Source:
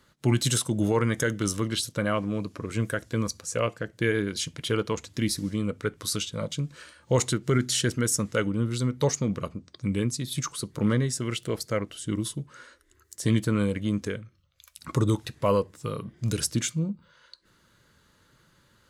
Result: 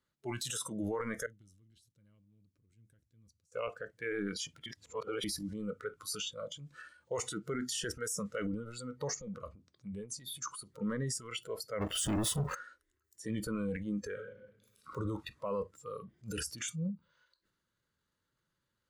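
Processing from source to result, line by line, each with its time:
0:01.26–0:03.52: guitar amp tone stack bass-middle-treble 10-0-1
0:04.66–0:05.24: reverse
0:09.20–0:10.43: downward compressor 3 to 1, threshold −28 dBFS
0:11.81–0:12.55: leveller curve on the samples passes 5
0:14.12–0:14.89: thrown reverb, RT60 1.5 s, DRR −1 dB
whole clip: transient designer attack −3 dB, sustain +8 dB; noise reduction from a noise print of the clip's start 16 dB; brickwall limiter −21 dBFS; level −6.5 dB

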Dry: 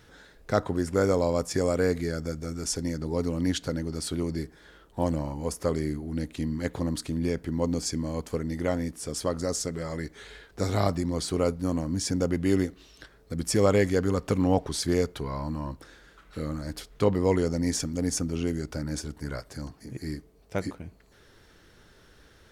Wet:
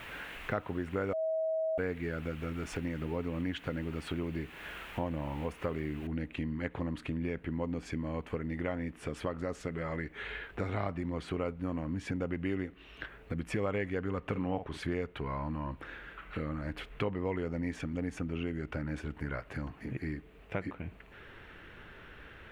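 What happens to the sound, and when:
0:01.13–0:01.78: beep over 641 Hz −22 dBFS
0:06.07: noise floor change −47 dB −67 dB
0:14.21–0:14.78: double-tracking delay 49 ms −10 dB
whole clip: drawn EQ curve 510 Hz 0 dB, 2,700 Hz +7 dB, 5,000 Hz −19 dB; downward compressor 3 to 1, threshold −39 dBFS; level +3.5 dB

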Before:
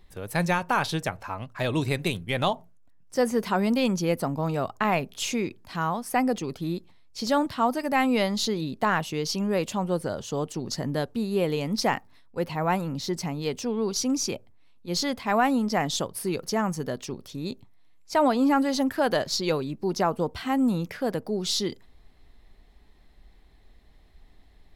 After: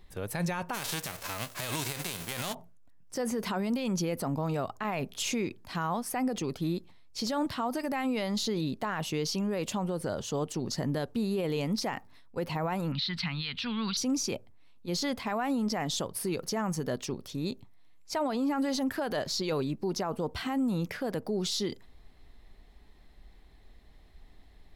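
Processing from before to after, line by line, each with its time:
0:00.73–0:02.53: spectral envelope flattened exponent 0.3
0:12.92–0:13.97: drawn EQ curve 200 Hz 0 dB, 400 Hz −19 dB, 720 Hz −10 dB, 1,400 Hz +9 dB, 2,000 Hz +10 dB, 4,000 Hz +15 dB, 6,500 Hz −17 dB
whole clip: brickwall limiter −23 dBFS

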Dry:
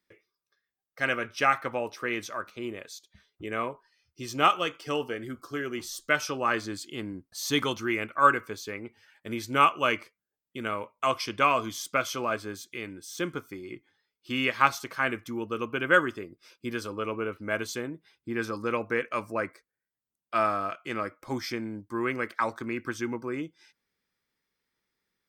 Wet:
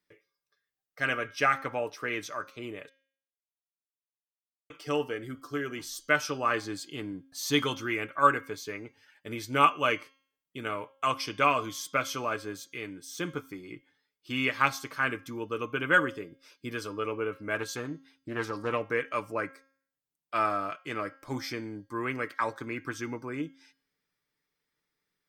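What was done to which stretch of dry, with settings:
0:02.89–0:04.70: silence
0:17.54–0:18.87: highs frequency-modulated by the lows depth 0.19 ms
whole clip: comb filter 6.8 ms, depth 44%; hum removal 270.1 Hz, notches 25; level −2 dB

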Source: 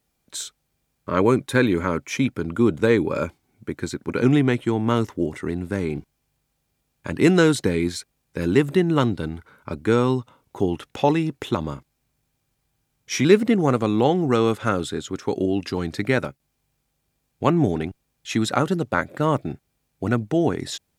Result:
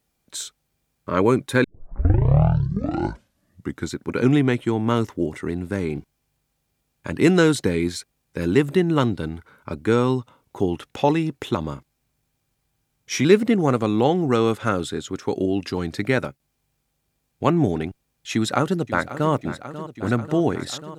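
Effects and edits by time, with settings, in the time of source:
0:01.64: tape start 2.32 s
0:18.33–0:19.32: delay throw 540 ms, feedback 80%, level −13.5 dB

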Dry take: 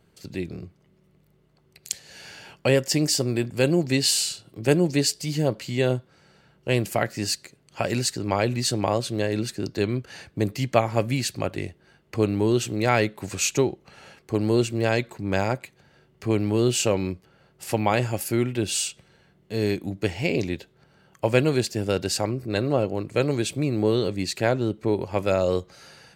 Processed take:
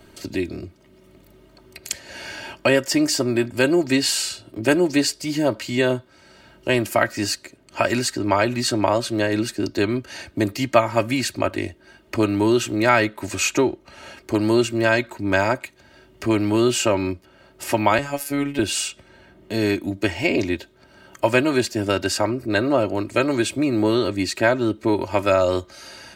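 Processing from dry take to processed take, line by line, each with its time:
0:17.98–0:18.59: phases set to zero 142 Hz
whole clip: comb filter 3.2 ms, depth 69%; dynamic equaliser 1,300 Hz, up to +8 dB, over −40 dBFS, Q 1.1; multiband upward and downward compressor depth 40%; level +1 dB

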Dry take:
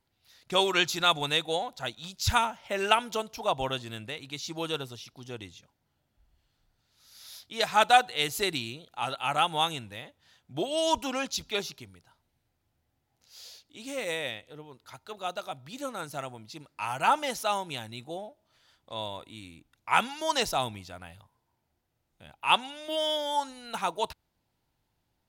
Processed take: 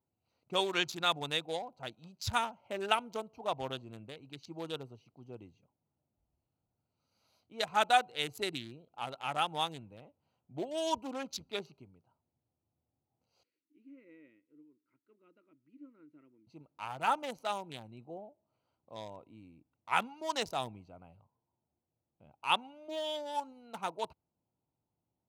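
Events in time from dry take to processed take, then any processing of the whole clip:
0:13.43–0:16.47: pair of resonant band-passes 750 Hz, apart 2.6 octaves
whole clip: adaptive Wiener filter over 25 samples; high-pass filter 99 Hz 12 dB per octave; level −6 dB

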